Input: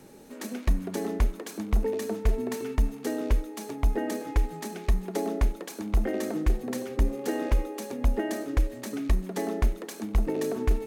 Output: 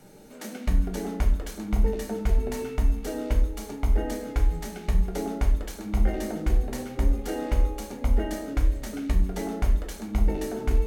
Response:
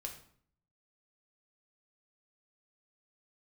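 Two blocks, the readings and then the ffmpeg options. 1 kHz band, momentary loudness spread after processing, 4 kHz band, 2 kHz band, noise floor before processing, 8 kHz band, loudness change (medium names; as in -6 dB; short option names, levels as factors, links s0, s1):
0.0 dB, 4 LU, +0.5 dB, -0.5 dB, -44 dBFS, 0.0 dB, +1.5 dB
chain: -filter_complex "[1:a]atrim=start_sample=2205,asetrate=57330,aresample=44100[s0];[0:a][s0]afir=irnorm=-1:irlink=0,volume=1.78"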